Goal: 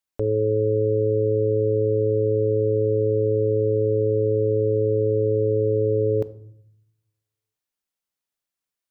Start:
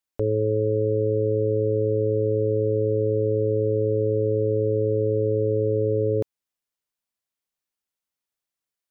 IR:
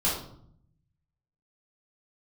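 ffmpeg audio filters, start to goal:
-filter_complex "[0:a]asplit=2[a][b];[1:a]atrim=start_sample=2205,adelay=14[c];[b][c]afir=irnorm=-1:irlink=0,volume=-26dB[d];[a][d]amix=inputs=2:normalize=0"

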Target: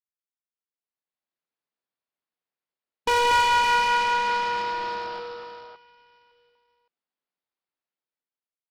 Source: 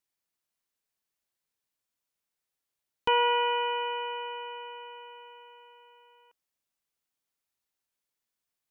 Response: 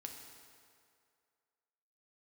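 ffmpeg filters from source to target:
-af "highpass=170,bandreject=f=50:t=h:w=6,bandreject=f=100:t=h:w=6,bandreject=f=150:t=h:w=6,bandreject=f=200:t=h:w=6,bandreject=f=250:t=h:w=6,bandreject=f=300:t=h:w=6,bandreject=f=350:t=h:w=6,bandreject=f=400:t=h:w=6,afwtdn=0.01,highshelf=f=2.9k:g=-11.5,dynaudnorm=f=150:g=13:m=15dB,aresample=11025,acrusher=bits=2:mode=log:mix=0:aa=0.000001,aresample=44100,asoftclip=type=tanh:threshold=-19dB,aecho=1:1:178|239|564:0.316|0.668|0.422"

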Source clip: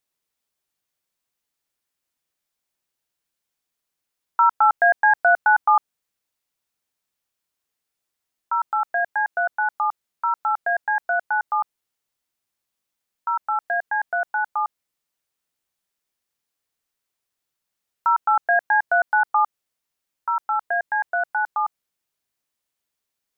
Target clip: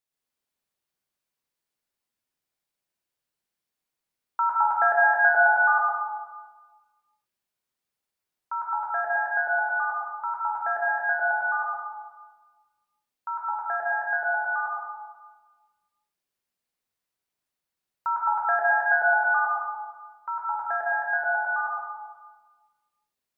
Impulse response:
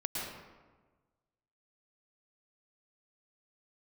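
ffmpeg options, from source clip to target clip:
-filter_complex "[1:a]atrim=start_sample=2205[a];[0:a][a]afir=irnorm=-1:irlink=0,volume=-6.5dB"

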